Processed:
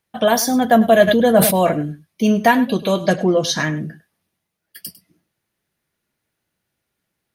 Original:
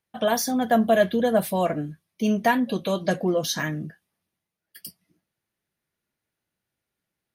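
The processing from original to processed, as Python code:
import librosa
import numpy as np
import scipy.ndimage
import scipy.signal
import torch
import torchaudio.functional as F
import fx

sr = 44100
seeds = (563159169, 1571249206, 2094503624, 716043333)

y = fx.lowpass(x, sr, hz=7700.0, slope=12, at=(3.13, 3.77))
y = y + 10.0 ** (-16.5 / 20.0) * np.pad(y, (int(101 * sr / 1000.0), 0))[:len(y)]
y = fx.sustainer(y, sr, db_per_s=57.0, at=(1.07, 1.69), fade=0.02)
y = y * librosa.db_to_amplitude(7.0)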